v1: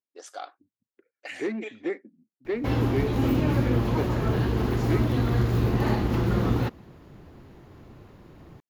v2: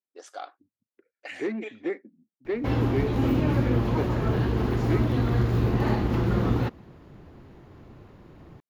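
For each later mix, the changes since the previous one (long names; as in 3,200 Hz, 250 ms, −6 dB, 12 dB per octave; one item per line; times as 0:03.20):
master: add high-shelf EQ 5,400 Hz −7 dB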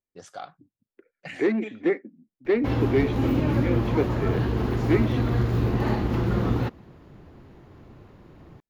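first voice: remove linear-phase brick-wall high-pass 270 Hz
second voice +7.0 dB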